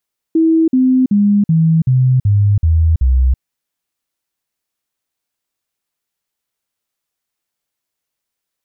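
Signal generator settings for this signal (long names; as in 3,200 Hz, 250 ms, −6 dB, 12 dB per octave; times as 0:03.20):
stepped sweep 324 Hz down, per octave 3, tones 8, 0.33 s, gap 0.05 s −8 dBFS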